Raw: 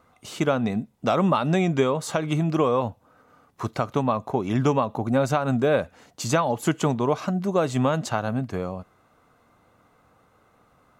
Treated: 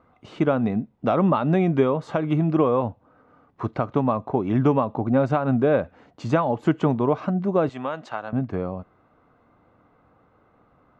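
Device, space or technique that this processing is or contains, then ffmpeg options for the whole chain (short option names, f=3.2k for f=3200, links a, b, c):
phone in a pocket: -filter_complex "[0:a]asettb=1/sr,asplit=3[a][b][c];[a]atrim=end=7.694[d];[b]atrim=start=7.69:end=8.33,asetpts=PTS-STARTPTS,afade=t=in:d=0.004:c=qsin,afade=t=out:st=0.636:d=0.004:c=qsin,highpass=f=1.1k:p=1[e];[c]atrim=start=8.326[f];[d][e]acrossfade=d=0.004:c1=hsin:c2=qsin[g];[g][f]acrossfade=d=0.004:c1=qsin:c2=hsin,lowpass=3.3k,equalizer=f=300:t=o:w=0.43:g=3,highshelf=f=2.1k:g=-9,volume=1.5dB"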